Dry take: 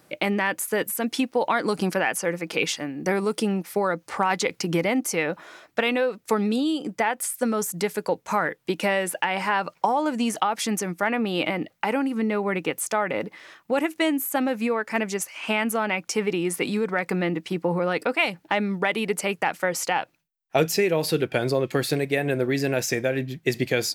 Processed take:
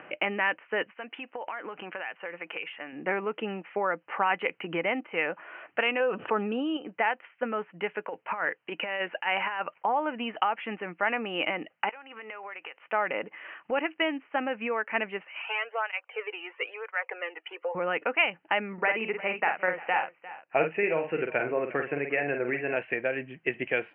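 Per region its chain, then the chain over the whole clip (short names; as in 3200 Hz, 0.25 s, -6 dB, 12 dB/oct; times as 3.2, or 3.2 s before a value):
0.93–2.93 low shelf 330 Hz -10.5 dB + compressor 10:1, threshold -28 dBFS
6–6.77 median filter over 5 samples + bell 2100 Hz -11 dB 0.43 oct + fast leveller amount 70%
7.95–9.85 low shelf 380 Hz -4 dB + negative-ratio compressor -26 dBFS, ratio -0.5
11.89–12.8 HPF 700 Hz + compressor 8:1, threshold -38 dBFS
15.42–17.75 elliptic high-pass 460 Hz, stop band 80 dB + tape flanging out of phase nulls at 1 Hz, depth 2 ms
18.73–22.76 steep low-pass 2700 Hz 48 dB/oct + doubler 49 ms -6 dB + echo 0.351 s -19 dB
whole clip: HPF 780 Hz 6 dB/oct; upward compressor, threshold -33 dBFS; Chebyshev low-pass 3000 Hz, order 8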